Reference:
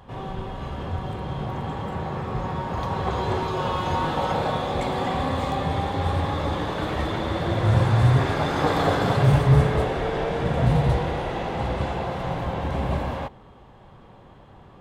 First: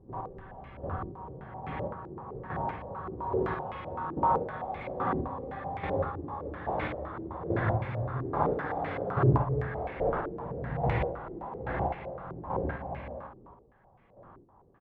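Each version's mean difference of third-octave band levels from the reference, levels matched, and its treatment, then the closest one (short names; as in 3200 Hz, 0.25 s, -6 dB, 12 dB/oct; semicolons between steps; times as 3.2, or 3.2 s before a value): 9.0 dB: chopper 1.2 Hz, depth 65%, duty 25%; on a send: early reflections 53 ms -6 dB, 70 ms -8 dB; on the sum: stepped low-pass 7.8 Hz 350–2200 Hz; gain -8.5 dB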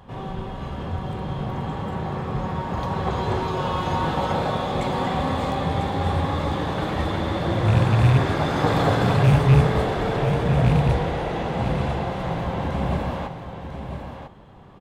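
1.5 dB: rattling part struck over -15 dBFS, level -21 dBFS; bell 190 Hz +3.5 dB 0.77 oct; on a send: echo 0.997 s -8.5 dB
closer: second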